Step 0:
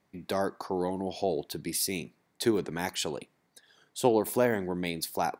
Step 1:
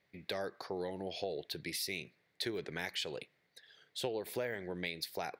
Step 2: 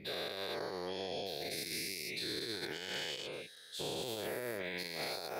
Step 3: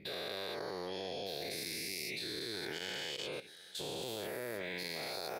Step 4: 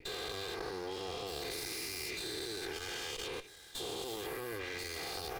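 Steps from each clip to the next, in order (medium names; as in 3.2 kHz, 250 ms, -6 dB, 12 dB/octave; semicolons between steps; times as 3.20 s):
ten-band graphic EQ 125 Hz +3 dB, 250 Hz -6 dB, 500 Hz +6 dB, 1 kHz -6 dB, 2 kHz +10 dB, 4 kHz +8 dB, 8 kHz -5 dB; compression 4:1, threshold -28 dBFS, peak gain reduction 10 dB; trim -7 dB
every event in the spectrogram widened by 480 ms; peak limiter -23 dBFS, peak gain reduction 10.5 dB; trim -6.5 dB
level held to a coarse grid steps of 15 dB; delay 781 ms -21.5 dB; trim +4 dB
comb filter that takes the minimum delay 2.5 ms; trim +2 dB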